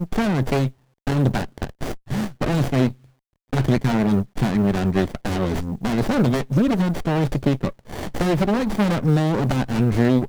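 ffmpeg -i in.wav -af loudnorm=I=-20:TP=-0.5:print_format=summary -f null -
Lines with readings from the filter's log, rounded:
Input Integrated:    -21.4 LUFS
Input True Peak:      -4.4 dBTP
Input LRA:             2.6 LU
Input Threshold:     -31.8 LUFS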